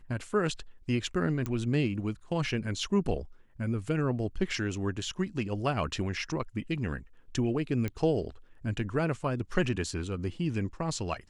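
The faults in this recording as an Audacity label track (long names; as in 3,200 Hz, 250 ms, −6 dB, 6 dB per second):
1.460000	1.460000	click −20 dBFS
7.880000	7.880000	click −21 dBFS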